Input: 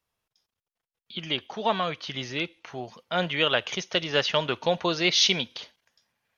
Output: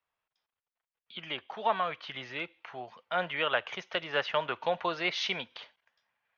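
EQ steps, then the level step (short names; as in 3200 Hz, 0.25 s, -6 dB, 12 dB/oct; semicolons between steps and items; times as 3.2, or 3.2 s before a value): three-band isolator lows -13 dB, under 600 Hz, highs -17 dB, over 3400 Hz; dynamic EQ 3400 Hz, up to -5 dB, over -39 dBFS, Q 1.1; high shelf 5800 Hz -7 dB; 0.0 dB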